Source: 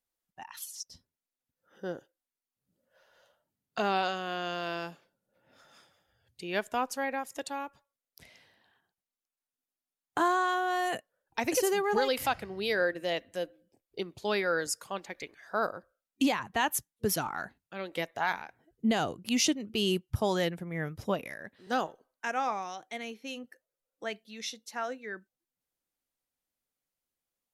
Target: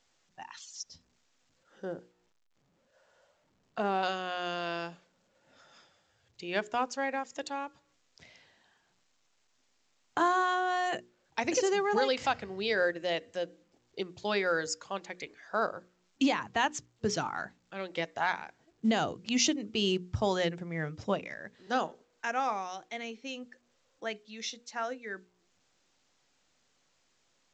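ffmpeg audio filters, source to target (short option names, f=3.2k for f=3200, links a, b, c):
-filter_complex "[0:a]highpass=68,bandreject=f=60:t=h:w=6,bandreject=f=120:t=h:w=6,bandreject=f=180:t=h:w=6,bandreject=f=240:t=h:w=6,bandreject=f=300:t=h:w=6,bandreject=f=360:t=h:w=6,bandreject=f=420:t=h:w=6,bandreject=f=480:t=h:w=6,asettb=1/sr,asplit=3[a][b][c];[a]atrim=end=1.854[d];[b]atrim=start=1.85:end=4.03,asetpts=PTS-STARTPTS,afade=t=in:d=0.004:c=qsin,afade=t=out:st=2.176:d=0.004:c=qsin,lowpass=f=1.2k:p=1[e];[c]atrim=start=4.026[f];[d][e]acrossfade=d=0.004:c1=hsin:c2=qsin[g];[g][f]acrossfade=d=0.004:c1=qsin:c2=hsin" -ar 16000 -c:a pcm_alaw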